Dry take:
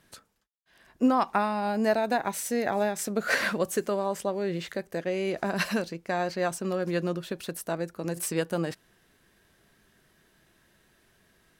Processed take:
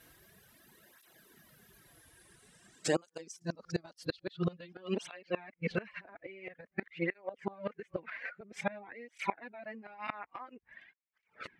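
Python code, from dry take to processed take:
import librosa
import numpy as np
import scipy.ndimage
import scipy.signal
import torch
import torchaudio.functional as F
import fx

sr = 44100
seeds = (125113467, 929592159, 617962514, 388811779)

y = x[::-1].copy()
y = fx.dereverb_blind(y, sr, rt60_s=1.0)
y = fx.filter_sweep_lowpass(y, sr, from_hz=13000.0, to_hz=2200.0, start_s=1.64, end_s=5.59, q=4.3)
y = fx.gate_flip(y, sr, shuts_db=-21.0, range_db=-26)
y = fx.flanger_cancel(y, sr, hz=0.49, depth_ms=5.4)
y = y * 10.0 ** (6.5 / 20.0)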